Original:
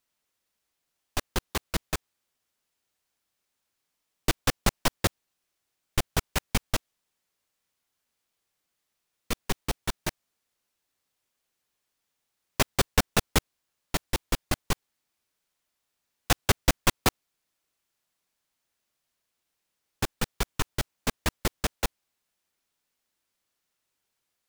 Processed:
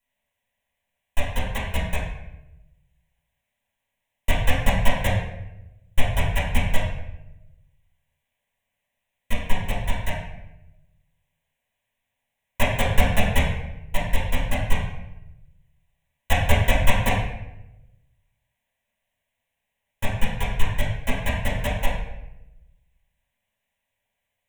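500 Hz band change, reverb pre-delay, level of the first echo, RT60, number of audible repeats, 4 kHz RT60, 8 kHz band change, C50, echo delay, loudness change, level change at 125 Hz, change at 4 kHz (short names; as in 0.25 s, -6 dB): +4.5 dB, 3 ms, none, 0.90 s, none, 0.65 s, -5.0 dB, 2.5 dB, none, +3.5 dB, +8.5 dB, 0.0 dB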